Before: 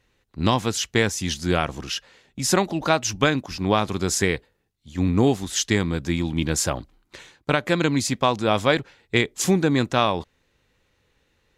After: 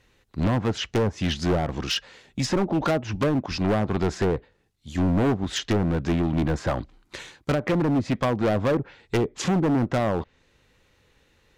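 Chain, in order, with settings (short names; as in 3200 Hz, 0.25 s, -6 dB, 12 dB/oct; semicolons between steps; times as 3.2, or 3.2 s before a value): treble ducked by the level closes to 630 Hz, closed at -16 dBFS; overloaded stage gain 23 dB; gain +4.5 dB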